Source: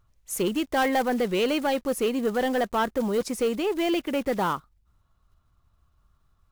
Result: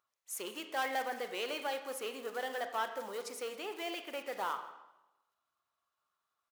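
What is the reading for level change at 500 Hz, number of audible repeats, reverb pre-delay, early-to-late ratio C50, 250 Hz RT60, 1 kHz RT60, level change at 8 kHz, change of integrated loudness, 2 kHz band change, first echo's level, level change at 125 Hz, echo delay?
-14.5 dB, 1, 30 ms, 9.0 dB, 1.0 s, 0.95 s, -9.0 dB, -12.5 dB, -8.5 dB, -20.0 dB, under -25 dB, 166 ms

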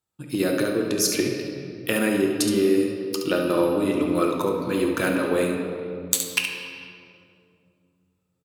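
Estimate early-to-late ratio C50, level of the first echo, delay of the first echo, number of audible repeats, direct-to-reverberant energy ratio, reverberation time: 2.0 dB, -7.5 dB, 70 ms, 1, 1.0 dB, 2.4 s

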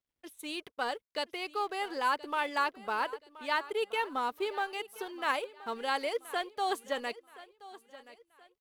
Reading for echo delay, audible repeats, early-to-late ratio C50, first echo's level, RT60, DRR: 1026 ms, 2, no reverb, -18.0 dB, no reverb, no reverb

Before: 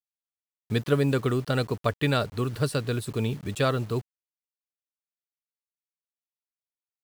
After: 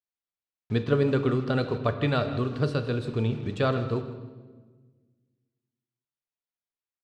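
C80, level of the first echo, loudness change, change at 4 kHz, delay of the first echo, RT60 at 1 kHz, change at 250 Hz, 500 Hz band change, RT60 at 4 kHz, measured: 10.0 dB, -16.0 dB, 0.0 dB, -4.0 dB, 159 ms, 1.2 s, +1.0 dB, +0.5 dB, 1.0 s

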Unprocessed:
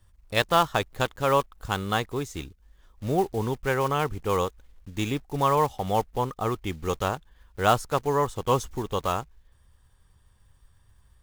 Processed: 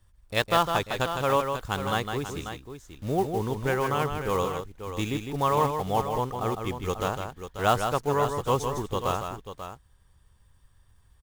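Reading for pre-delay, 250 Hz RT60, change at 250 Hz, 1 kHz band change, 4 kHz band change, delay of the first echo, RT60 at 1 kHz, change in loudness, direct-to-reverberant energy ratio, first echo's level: no reverb, no reverb, -0.5 dB, -1.0 dB, -1.0 dB, 156 ms, no reverb, -1.0 dB, no reverb, -6.5 dB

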